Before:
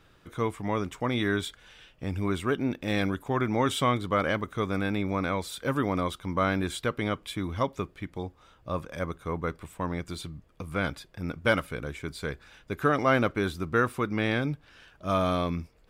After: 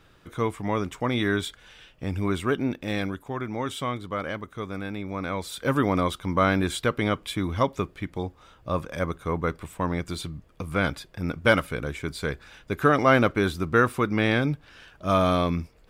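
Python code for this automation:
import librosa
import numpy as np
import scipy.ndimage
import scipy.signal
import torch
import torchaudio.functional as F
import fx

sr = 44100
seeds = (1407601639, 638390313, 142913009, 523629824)

y = fx.gain(x, sr, db=fx.line((2.59, 2.5), (3.38, -4.5), (5.05, -4.5), (5.72, 4.5)))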